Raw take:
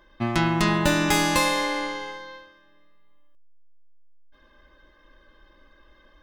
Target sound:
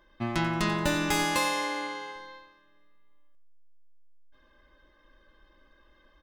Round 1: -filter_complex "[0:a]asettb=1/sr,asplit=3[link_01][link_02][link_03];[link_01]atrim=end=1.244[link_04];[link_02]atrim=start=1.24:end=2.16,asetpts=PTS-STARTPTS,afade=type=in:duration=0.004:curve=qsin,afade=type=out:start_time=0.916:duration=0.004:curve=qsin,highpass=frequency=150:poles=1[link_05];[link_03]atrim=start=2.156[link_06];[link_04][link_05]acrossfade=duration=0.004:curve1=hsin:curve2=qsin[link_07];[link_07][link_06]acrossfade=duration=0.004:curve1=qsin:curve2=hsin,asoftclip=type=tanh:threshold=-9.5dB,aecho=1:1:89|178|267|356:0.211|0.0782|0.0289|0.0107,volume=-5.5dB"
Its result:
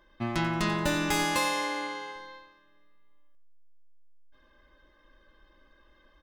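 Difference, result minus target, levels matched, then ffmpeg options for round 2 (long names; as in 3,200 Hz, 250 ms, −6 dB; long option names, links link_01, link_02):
soft clipping: distortion +17 dB
-filter_complex "[0:a]asettb=1/sr,asplit=3[link_01][link_02][link_03];[link_01]atrim=end=1.244[link_04];[link_02]atrim=start=1.24:end=2.16,asetpts=PTS-STARTPTS,afade=type=in:duration=0.004:curve=qsin,afade=type=out:start_time=0.916:duration=0.004:curve=qsin,highpass=frequency=150:poles=1[link_05];[link_03]atrim=start=2.156[link_06];[link_04][link_05]acrossfade=duration=0.004:curve1=hsin:curve2=qsin[link_07];[link_07][link_06]acrossfade=duration=0.004:curve1=qsin:curve2=hsin,asoftclip=type=tanh:threshold=0dB,aecho=1:1:89|178|267|356:0.211|0.0782|0.0289|0.0107,volume=-5.5dB"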